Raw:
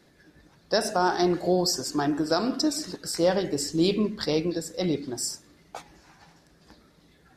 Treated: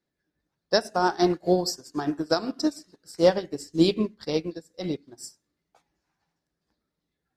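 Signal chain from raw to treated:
expander for the loud parts 2.5 to 1, over −38 dBFS
level +5.5 dB

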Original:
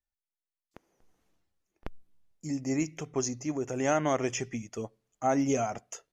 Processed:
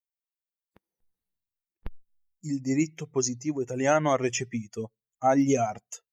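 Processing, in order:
spectral dynamics exaggerated over time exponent 1.5
level +6 dB

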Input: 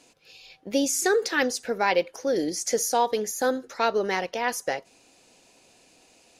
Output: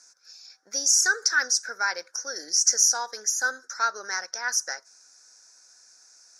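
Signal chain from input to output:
pair of resonant band-passes 2,900 Hz, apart 1.9 octaves
high-shelf EQ 4,300 Hz +11 dB
level +8 dB

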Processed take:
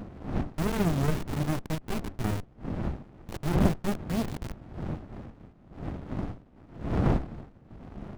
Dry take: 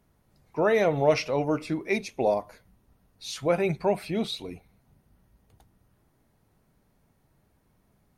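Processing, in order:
hold until the input has moved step −27 dBFS
wind on the microphone 400 Hz −32 dBFS
windowed peak hold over 65 samples

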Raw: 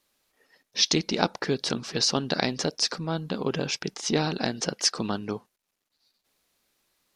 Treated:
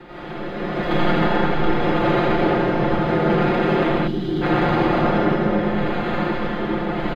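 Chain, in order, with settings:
compressor on every frequency bin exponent 0.2
rotating-speaker cabinet horn 0.8 Hz
bad sample-rate conversion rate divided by 8×, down none, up hold
high-frequency loss of the air 350 metres
downward compressor, threshold −22 dBFS, peak gain reduction 9 dB
on a send: echo with a time of its own for lows and highs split 430 Hz, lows 645 ms, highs 82 ms, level −8 dB
on the sum: comb and all-pass reverb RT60 3.5 s, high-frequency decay 0.6×, pre-delay 50 ms, DRR −8 dB
gain on a spectral selection 0:04.07–0:04.42, 410–2,800 Hz −14 dB
comb filter 5.7 ms, depth 88%
multiband upward and downward expander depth 70%
level −3.5 dB

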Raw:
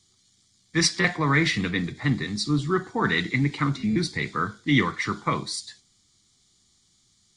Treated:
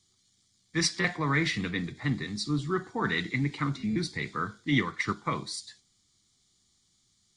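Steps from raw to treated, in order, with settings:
0:04.71–0:05.25: transient designer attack +7 dB, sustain −3 dB
level −5.5 dB

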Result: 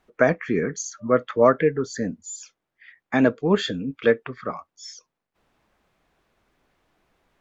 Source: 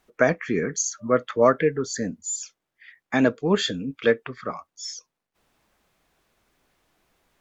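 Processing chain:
high-shelf EQ 4,600 Hz −11.5 dB
level +1.5 dB

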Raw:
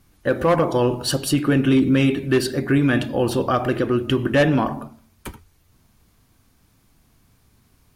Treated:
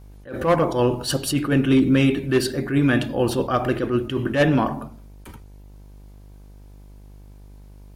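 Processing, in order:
hum with harmonics 50 Hz, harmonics 20, −44 dBFS −8 dB per octave
level that may rise only so fast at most 150 dB per second

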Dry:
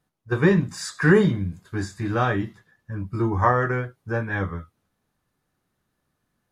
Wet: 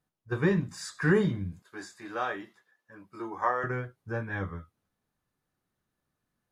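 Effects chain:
0:01.62–0:03.64: high-pass filter 440 Hz 12 dB per octave
level −7.5 dB

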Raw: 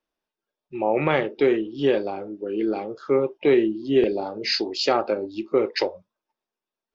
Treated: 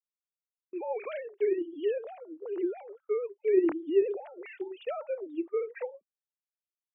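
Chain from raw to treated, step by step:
three sine waves on the formant tracks
noise gate −40 dBFS, range −29 dB
level −8.5 dB

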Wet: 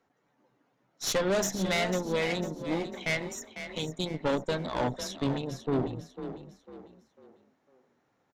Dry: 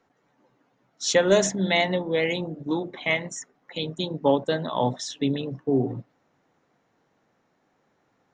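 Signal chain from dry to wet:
tube saturation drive 23 dB, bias 0.8
echo with shifted repeats 499 ms, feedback 36%, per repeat +31 Hz, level −10.5 dB

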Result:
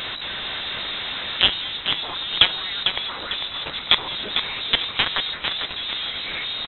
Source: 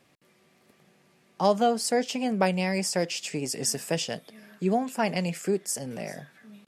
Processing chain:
converter with a step at zero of −26 dBFS
harmonic and percussive parts rebalanced harmonic −12 dB
dynamic equaliser 510 Hz, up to +7 dB, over −49 dBFS, Q 5.9
in parallel at +1 dB: speech leveller 0.5 s
on the sum: mains hum 50 Hz, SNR 14 dB
log-companded quantiser 2 bits
on a send: echo with shifted repeats 449 ms, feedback 42%, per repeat −38 Hz, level −7 dB
on the sum: voice inversion scrambler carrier 3,900 Hz
hum removal 163.2 Hz, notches 23
level −4 dB

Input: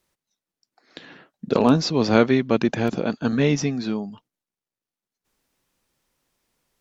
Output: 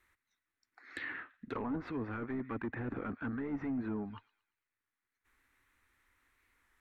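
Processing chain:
drawn EQ curve 100 Hz 0 dB, 160 Hz −18 dB, 280 Hz −5 dB, 600 Hz −13 dB, 1,200 Hz +2 dB, 2,000 Hz +8 dB, 3,000 Hz −5 dB, 4,300 Hz 0 dB, 6,300 Hz −8 dB
delay with a high-pass on its return 114 ms, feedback 40%, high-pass 1,500 Hz, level −22 dB
reversed playback
downward compressor 6 to 1, threshold −31 dBFS, peak gain reduction 15.5 dB
reversed playback
hard clipping −34 dBFS, distortion −8 dB
parametric band 4,800 Hz −13.5 dB 0.54 octaves
treble cut that deepens with the level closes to 730 Hz, closed at −35 dBFS
wow of a warped record 33 1/3 rpm, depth 100 cents
level +2.5 dB

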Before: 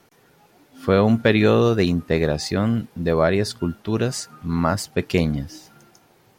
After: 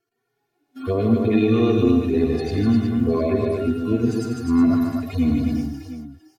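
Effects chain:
harmonic-percussive split with one part muted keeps harmonic
noise gate −48 dBFS, range −21 dB
comb filter 2.8 ms, depth 96%
downward compressor 5 to 1, threshold −20 dBFS, peak gain reduction 9 dB
hollow resonant body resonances 240/2,300 Hz, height 9 dB
on a send: multi-tap delay 91/150/252/364/706 ms −10.5/−6.5/−5/−9/−14.5 dB

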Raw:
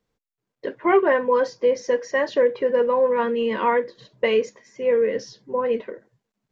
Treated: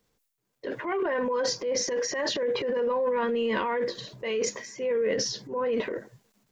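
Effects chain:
high-shelf EQ 4,800 Hz +9 dB
in parallel at +3 dB: downward compressor, threshold −25 dBFS, peak gain reduction 13 dB
on the sum: brickwall limiter −15.5 dBFS, peak gain reduction 12 dB
transient designer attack −6 dB, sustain +9 dB
level −5 dB

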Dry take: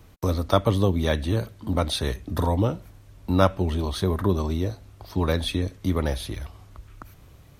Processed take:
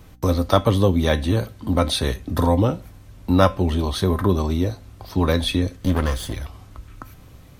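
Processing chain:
0:05.76–0:06.33: lower of the sound and its delayed copy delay 0.63 ms
tuned comb filter 260 Hz, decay 0.2 s, harmonics all, mix 60%
in parallel at −5 dB: soft clipping −18 dBFS, distortion −17 dB
on the sum: mains hum 60 Hz, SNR 30 dB
level +7 dB

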